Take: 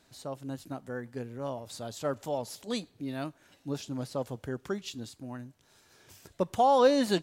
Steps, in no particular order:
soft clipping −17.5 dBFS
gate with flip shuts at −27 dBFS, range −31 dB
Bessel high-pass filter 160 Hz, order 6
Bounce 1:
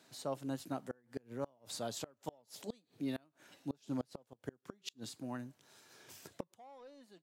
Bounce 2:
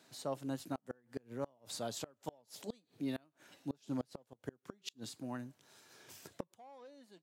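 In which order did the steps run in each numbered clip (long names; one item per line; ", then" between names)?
Bessel high-pass filter, then soft clipping, then gate with flip
soft clipping, then Bessel high-pass filter, then gate with flip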